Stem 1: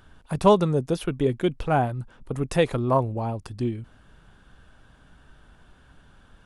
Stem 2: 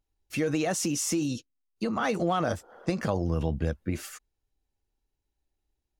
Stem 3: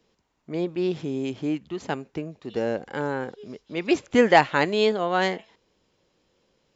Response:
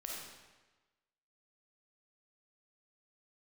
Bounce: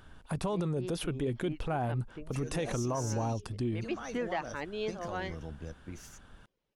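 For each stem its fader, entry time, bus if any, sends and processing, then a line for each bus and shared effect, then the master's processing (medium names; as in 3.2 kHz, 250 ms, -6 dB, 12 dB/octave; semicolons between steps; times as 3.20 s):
-1.0 dB, 0.00 s, no send, peak limiter -16.5 dBFS, peak gain reduction 11.5 dB
-14.5 dB, 2.00 s, no send, peaking EQ 6 kHz +12 dB 0.36 oct
-13.5 dB, 0.00 s, no send, low-pass 3.9 kHz; reverb removal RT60 0.66 s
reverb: none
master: peak limiter -24.5 dBFS, peak gain reduction 8.5 dB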